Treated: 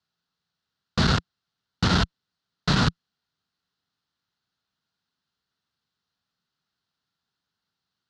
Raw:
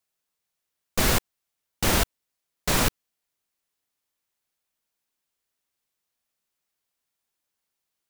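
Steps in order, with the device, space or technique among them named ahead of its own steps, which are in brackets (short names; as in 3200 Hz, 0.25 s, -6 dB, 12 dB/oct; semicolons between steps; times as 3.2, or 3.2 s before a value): guitar amplifier (tube stage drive 23 dB, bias 0.6; tone controls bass +9 dB, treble +6 dB; speaker cabinet 80–4500 Hz, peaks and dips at 170 Hz +4 dB, 340 Hz -3 dB, 560 Hz -6 dB, 1400 Hz +7 dB, 2300 Hz -8 dB, 4200 Hz +4 dB); gain +5 dB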